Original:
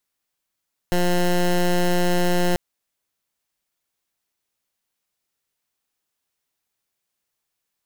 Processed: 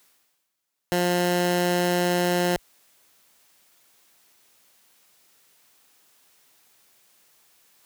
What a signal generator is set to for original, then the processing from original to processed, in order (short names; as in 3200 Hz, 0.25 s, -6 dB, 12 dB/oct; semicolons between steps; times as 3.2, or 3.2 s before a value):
pulse 177 Hz, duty 15% -18.5 dBFS 1.64 s
HPF 46 Hz; low shelf 110 Hz -11 dB; reverse; upward compressor, threshold -43 dBFS; reverse